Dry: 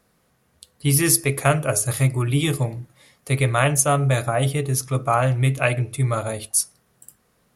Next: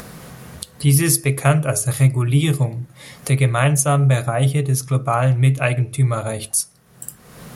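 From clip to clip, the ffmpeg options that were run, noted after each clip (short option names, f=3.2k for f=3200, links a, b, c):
-af "equalizer=f=150:t=o:w=0.68:g=6.5,acompressor=mode=upward:threshold=-17dB:ratio=2.5"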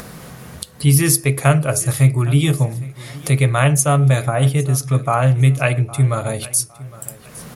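-af "aecho=1:1:810|1620:0.106|0.0318,volume=1.5dB"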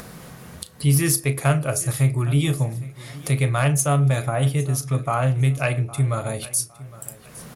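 -filter_complex "[0:a]asoftclip=type=tanh:threshold=-3.5dB,asplit=2[a][b];[b]adelay=35,volume=-14dB[c];[a][c]amix=inputs=2:normalize=0,volume=-4.5dB"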